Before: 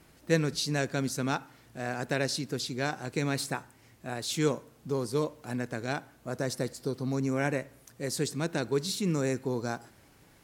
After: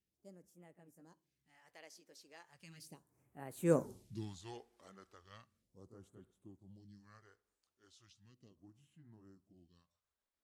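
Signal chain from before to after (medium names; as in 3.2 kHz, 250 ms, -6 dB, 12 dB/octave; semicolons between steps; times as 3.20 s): pitch bend over the whole clip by -3 st starting unshifted; Doppler pass-by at 3.85 s, 58 m/s, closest 3.8 m; phase shifter stages 2, 0.36 Hz, lowest notch 120–4800 Hz; trim +5 dB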